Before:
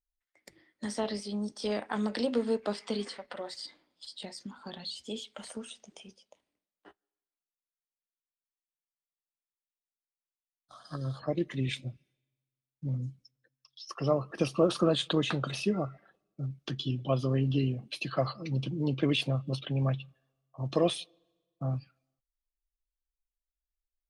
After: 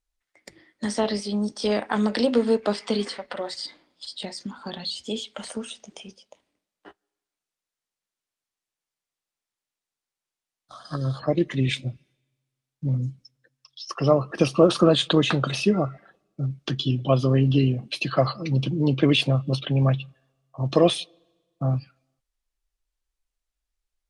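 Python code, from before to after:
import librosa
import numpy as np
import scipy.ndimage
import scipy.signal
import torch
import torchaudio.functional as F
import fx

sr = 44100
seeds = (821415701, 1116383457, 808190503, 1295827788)

y = scipy.signal.sosfilt(scipy.signal.butter(2, 9900.0, 'lowpass', fs=sr, output='sos'), x)
y = y * librosa.db_to_amplitude(8.5)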